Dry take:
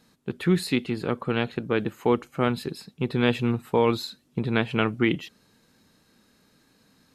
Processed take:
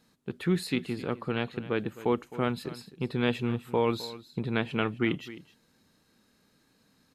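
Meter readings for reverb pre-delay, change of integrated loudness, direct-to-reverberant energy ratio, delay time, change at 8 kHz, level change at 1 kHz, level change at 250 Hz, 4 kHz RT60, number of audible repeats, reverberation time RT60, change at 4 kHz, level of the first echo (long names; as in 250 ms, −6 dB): no reverb audible, −5.0 dB, no reverb audible, 261 ms, −5.0 dB, −5.0 dB, −5.0 dB, no reverb audible, 1, no reverb audible, −5.0 dB, −16.5 dB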